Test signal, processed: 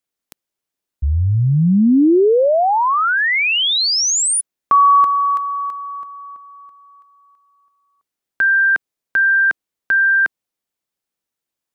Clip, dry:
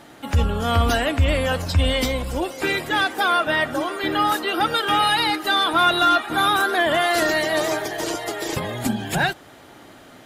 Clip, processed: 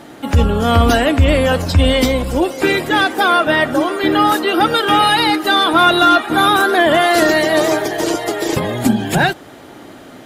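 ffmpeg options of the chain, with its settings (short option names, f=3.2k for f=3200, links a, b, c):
-af "equalizer=f=300:w=0.61:g=5.5,volume=5dB"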